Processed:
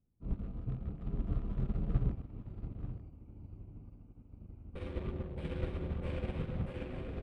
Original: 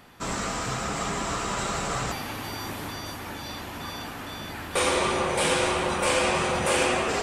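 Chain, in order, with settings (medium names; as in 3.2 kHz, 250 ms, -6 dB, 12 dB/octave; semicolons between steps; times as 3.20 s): local Wiener filter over 25 samples; amplifier tone stack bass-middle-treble 10-0-1; vibrato 5.4 Hz 9.9 cents; distance through air 500 m; delay 884 ms -5 dB; upward expansion 2.5:1, over -57 dBFS; trim +16.5 dB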